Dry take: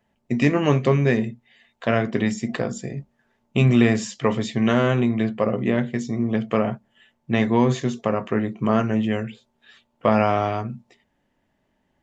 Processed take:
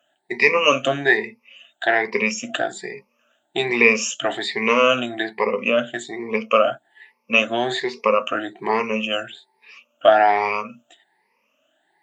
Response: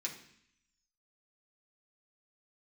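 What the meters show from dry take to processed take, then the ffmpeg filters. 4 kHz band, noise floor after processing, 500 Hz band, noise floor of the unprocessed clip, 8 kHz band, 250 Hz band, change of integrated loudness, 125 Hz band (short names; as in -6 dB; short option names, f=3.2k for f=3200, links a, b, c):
+10.0 dB, -69 dBFS, +3.0 dB, -71 dBFS, n/a, -7.5 dB, +2.0 dB, -17.5 dB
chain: -af "afftfilt=real='re*pow(10,22/40*sin(2*PI*(0.86*log(max(b,1)*sr/1024/100)/log(2)-(1.2)*(pts-256)/sr)))':imag='im*pow(10,22/40*sin(2*PI*(0.86*log(max(b,1)*sr/1024/100)/log(2)-(1.2)*(pts-256)/sr)))':win_size=1024:overlap=0.75,highpass=520,equalizer=f=2.6k:w=3.4:g=7.5,volume=1.5dB"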